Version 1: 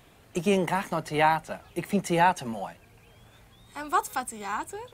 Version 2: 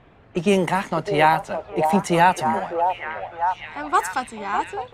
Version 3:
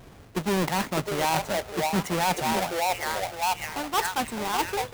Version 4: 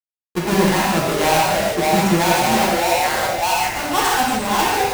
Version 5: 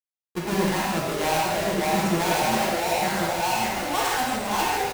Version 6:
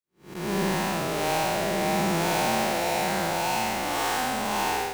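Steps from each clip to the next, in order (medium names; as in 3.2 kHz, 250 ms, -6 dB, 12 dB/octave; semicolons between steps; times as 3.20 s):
repeats whose band climbs or falls 607 ms, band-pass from 610 Hz, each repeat 0.7 oct, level -2 dB; level-controlled noise filter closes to 1.9 kHz, open at -20 dBFS; trim +5.5 dB
square wave that keeps the level; reverse; compression 6:1, threshold -22 dBFS, peak gain reduction 12.5 dB; reverse; trim -1.5 dB
bit crusher 7-bit; gated-style reverb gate 190 ms flat, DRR -5 dB; trim +3.5 dB
delay 1088 ms -5.5 dB; trim -7.5 dB
spectral blur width 207 ms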